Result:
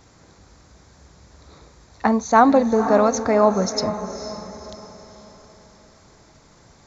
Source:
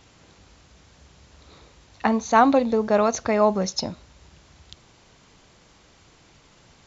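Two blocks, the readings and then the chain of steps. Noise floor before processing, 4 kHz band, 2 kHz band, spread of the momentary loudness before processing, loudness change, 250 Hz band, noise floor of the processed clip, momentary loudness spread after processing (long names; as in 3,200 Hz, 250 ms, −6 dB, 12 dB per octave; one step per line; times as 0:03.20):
−56 dBFS, +1.5 dB, +1.5 dB, 10 LU, +2.5 dB, +3.5 dB, −53 dBFS, 19 LU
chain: parametric band 2,900 Hz −12.5 dB 0.58 octaves
feedback delay with all-pass diffusion 494 ms, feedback 43%, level −10.5 dB
level +3 dB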